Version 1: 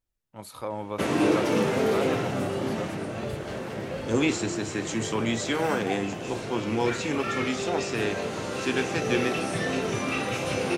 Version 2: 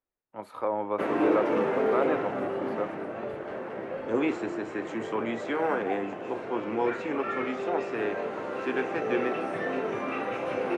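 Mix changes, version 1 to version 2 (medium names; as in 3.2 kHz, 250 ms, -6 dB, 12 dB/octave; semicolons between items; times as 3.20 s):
first voice +5.0 dB; master: add three-band isolator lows -17 dB, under 250 Hz, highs -23 dB, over 2.2 kHz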